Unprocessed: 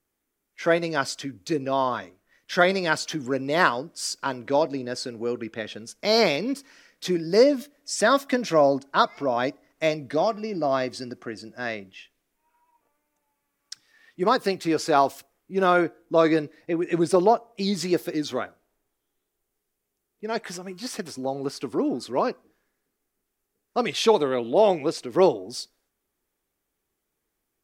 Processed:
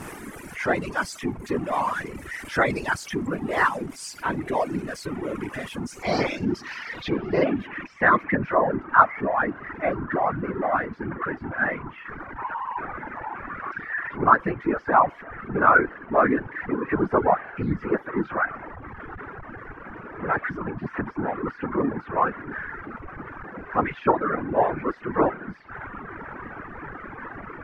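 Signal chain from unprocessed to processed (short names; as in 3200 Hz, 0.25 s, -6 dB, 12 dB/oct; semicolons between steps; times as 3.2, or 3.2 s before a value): zero-crossing step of -23.5 dBFS; graphic EQ 250/500/1000/2000/4000/8000 Hz +5/-4/+4/+5/-10/-10 dB; whisperiser; reverb removal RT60 1.2 s; low-pass sweep 8800 Hz -> 1500 Hz, 5.77–8.49; mismatched tape noise reduction decoder only; gain -4.5 dB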